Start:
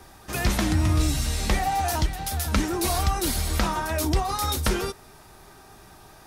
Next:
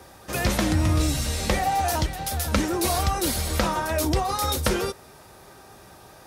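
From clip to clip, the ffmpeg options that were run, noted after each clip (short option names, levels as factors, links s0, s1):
-af "highpass=59,equalizer=f=530:w=5.4:g=9.5,volume=1.12"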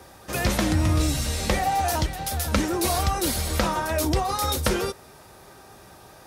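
-af anull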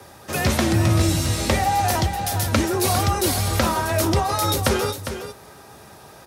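-filter_complex "[0:a]afreqshift=21,asplit=2[s0][s1];[s1]aecho=0:1:404:0.335[s2];[s0][s2]amix=inputs=2:normalize=0,volume=1.41"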